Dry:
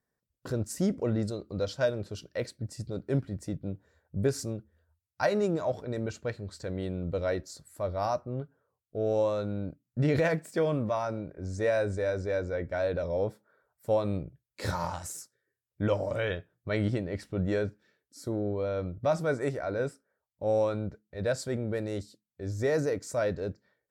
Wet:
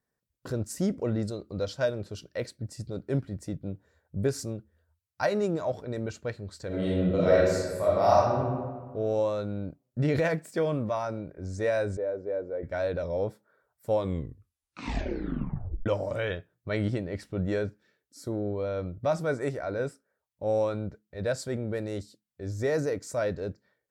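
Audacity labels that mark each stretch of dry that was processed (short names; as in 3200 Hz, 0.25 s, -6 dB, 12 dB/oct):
6.670000	8.390000	reverb throw, RT60 1.5 s, DRR -8 dB
11.970000	12.630000	band-pass 460 Hz, Q 1.2
13.930000	13.930000	tape stop 1.93 s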